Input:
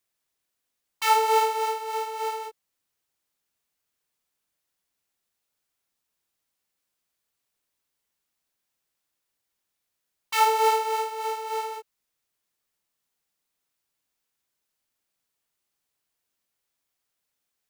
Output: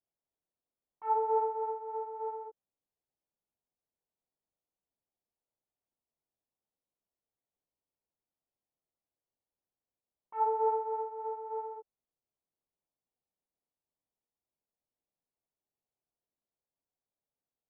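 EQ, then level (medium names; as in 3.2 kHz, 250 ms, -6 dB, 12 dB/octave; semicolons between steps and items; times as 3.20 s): four-pole ladder low-pass 1 kHz, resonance 25%; distance through air 450 m; 0.0 dB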